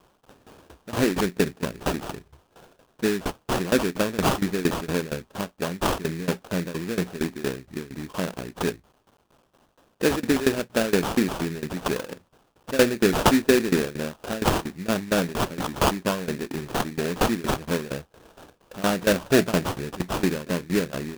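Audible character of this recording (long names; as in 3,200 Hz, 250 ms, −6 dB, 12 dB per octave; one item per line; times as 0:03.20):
a quantiser's noise floor 10 bits, dither triangular
tremolo saw down 4.3 Hz, depth 90%
aliases and images of a low sample rate 2,100 Hz, jitter 20%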